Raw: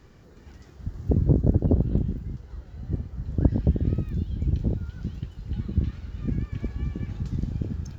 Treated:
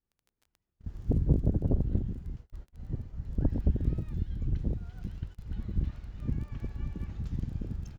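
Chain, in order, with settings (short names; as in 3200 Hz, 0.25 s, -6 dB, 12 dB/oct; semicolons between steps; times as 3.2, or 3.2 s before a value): gate -38 dBFS, range -32 dB; harmoniser -12 st 0 dB; crackle 15/s -38 dBFS; gain -8 dB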